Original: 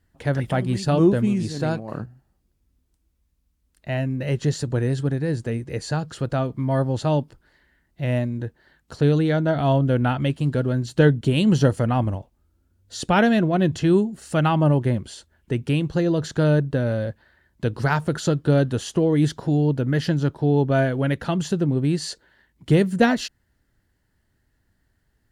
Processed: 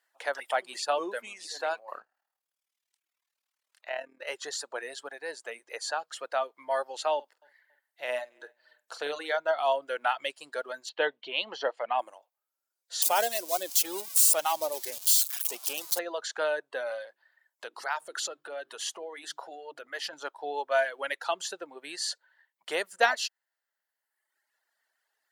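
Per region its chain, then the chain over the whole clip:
0:01.99–0:04.27: high-shelf EQ 5,500 Hz −10.5 dB + amplitude modulation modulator 38 Hz, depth 50% + one half of a high-frequency compander encoder only
0:07.14–0:09.37: double-tracking delay 48 ms −9.5 dB + repeating echo 278 ms, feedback 30%, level −21 dB
0:10.89–0:11.99: low-pass filter 4,100 Hz 24 dB per octave + parametric band 1,400 Hz −5 dB 0.51 octaves
0:13.02–0:15.99: spike at every zero crossing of −14 dBFS + parametric band 1,700 Hz −11 dB 1.4 octaves
0:17.02–0:20.13: mains-hum notches 50/100/150/200/250/300/350/400 Hz + downward compressor 4 to 1, threshold −24 dBFS
whole clip: high-pass filter 630 Hz 24 dB per octave; reverb reduction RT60 1.2 s

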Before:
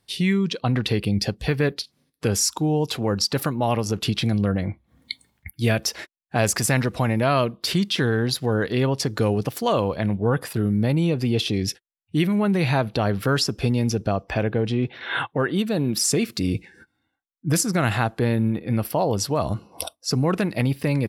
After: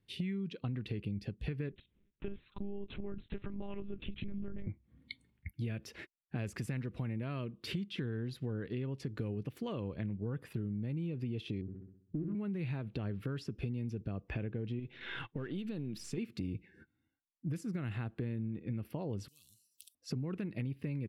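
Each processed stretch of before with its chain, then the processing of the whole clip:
0:01.72–0:04.67: downward compressor 1.5 to 1, threshold −34 dBFS + one-pitch LPC vocoder at 8 kHz 200 Hz
0:11.61–0:12.35: Chebyshev low-pass with heavy ripple 1,500 Hz, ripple 3 dB + flutter between parallel walls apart 11.1 metres, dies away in 0.62 s + windowed peak hold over 9 samples
0:14.79–0:16.18: gain on one half-wave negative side −3 dB + parametric band 4,800 Hz +6.5 dB 1.7 octaves + downward compressor 3 to 1, threshold −26 dBFS
0:19.28–0:19.95: inverse Chebyshev high-pass filter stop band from 1,900 Hz, stop band 70 dB + every bin compressed towards the loudest bin 4 to 1
whole clip: drawn EQ curve 140 Hz 0 dB, 390 Hz −3 dB, 710 Hz −15 dB, 2,600 Hz −6 dB, 5,200 Hz −19 dB; downward compressor 6 to 1, threshold −32 dBFS; level −3.5 dB

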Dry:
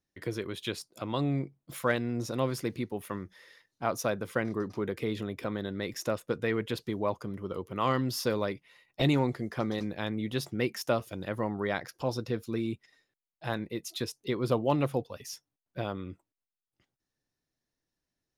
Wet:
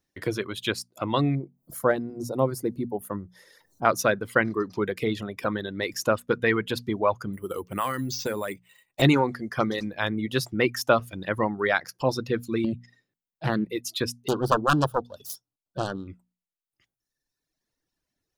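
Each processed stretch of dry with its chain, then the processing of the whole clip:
0:01.35–0:03.85: drawn EQ curve 800 Hz 0 dB, 2,500 Hz −19 dB, 11,000 Hz 0 dB + upward compression, threshold −46 dBFS
0:07.33–0:09.02: high-shelf EQ 8,700 Hz +5.5 dB + downward compressor 5 to 1, threshold −30 dBFS + bad sample-rate conversion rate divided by 4×, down filtered, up hold
0:12.64–0:13.65: parametric band 190 Hz +11 dB 2.1 octaves + downward compressor 5 to 1, threshold −26 dBFS + highs frequency-modulated by the lows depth 0.29 ms
0:14.28–0:16.08: phase distortion by the signal itself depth 0.84 ms + Butterworth band-reject 2,100 Hz, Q 1.3
whole clip: reverb reduction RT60 1.5 s; mains-hum notches 60/120/180/240 Hz; dynamic equaliser 1,500 Hz, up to +6 dB, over −46 dBFS, Q 1.4; level +7 dB

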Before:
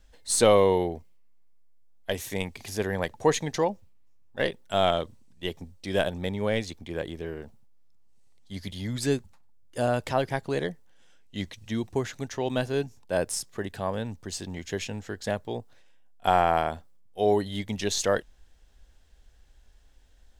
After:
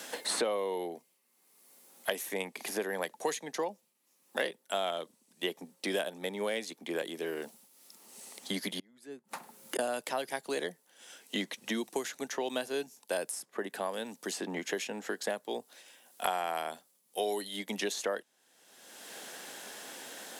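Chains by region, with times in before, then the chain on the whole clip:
0:08.79–0:09.79: upward compression, threshold −45 dBFS + high-pass with resonance 130 Hz, resonance Q 1.6 + gate with flip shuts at −32 dBFS, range −38 dB
whole clip: Bessel high-pass filter 330 Hz, order 8; parametric band 11,000 Hz +11 dB 0.8 octaves; multiband upward and downward compressor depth 100%; level −5 dB

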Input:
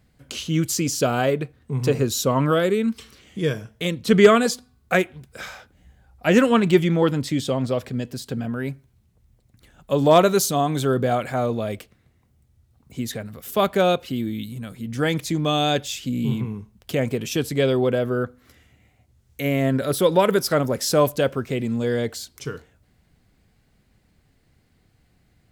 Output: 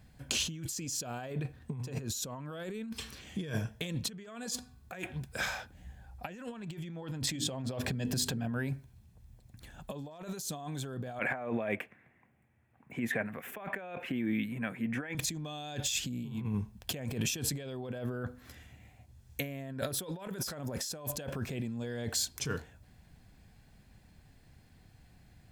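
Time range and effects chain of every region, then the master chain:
0:07.27–0:08.71: mains-hum notches 50/100/150/200/250/300/350/400/450 Hz + upward compression, threshold −25 dBFS
0:11.19–0:15.15: high-pass filter 230 Hz + high shelf with overshoot 3,100 Hz −13 dB, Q 3
whole clip: dynamic equaliser 7,000 Hz, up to +4 dB, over −46 dBFS, Q 2.8; comb filter 1.2 ms, depth 32%; compressor whose output falls as the input rises −31 dBFS, ratio −1; level −7 dB

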